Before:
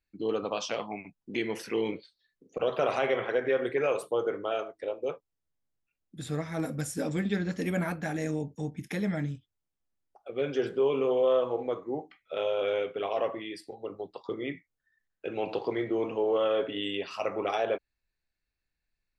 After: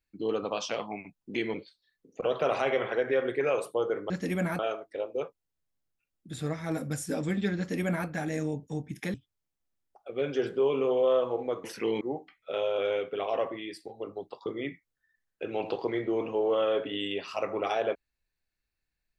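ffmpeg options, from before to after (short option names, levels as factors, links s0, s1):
-filter_complex "[0:a]asplit=7[s0][s1][s2][s3][s4][s5][s6];[s0]atrim=end=1.542[s7];[s1]atrim=start=1.908:end=4.472[s8];[s2]atrim=start=7.458:end=7.952[s9];[s3]atrim=start=4.468:end=9.022[s10];[s4]atrim=start=9.338:end=11.842[s11];[s5]atrim=start=1.538:end=1.912[s12];[s6]atrim=start=11.838[s13];[s7][s8]acrossfade=d=0.004:c1=hsin:c2=hsin[s14];[s14][s9]acrossfade=d=0.004:c1=hsin:c2=hsin[s15];[s15][s10]acrossfade=d=0.004:c1=hsin:c2=hsin[s16];[s16][s11]acrossfade=d=0.004:c1=hsin:c2=hsin[s17];[s17][s12]acrossfade=d=0.004:c1=hsin:c2=hsin[s18];[s18][s13]acrossfade=d=0.004:c1=hsin:c2=hsin"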